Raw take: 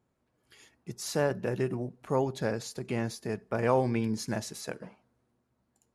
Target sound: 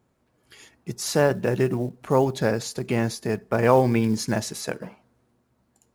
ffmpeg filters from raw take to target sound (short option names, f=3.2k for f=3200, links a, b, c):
-af "acrusher=bits=8:mode=log:mix=0:aa=0.000001,volume=8dB"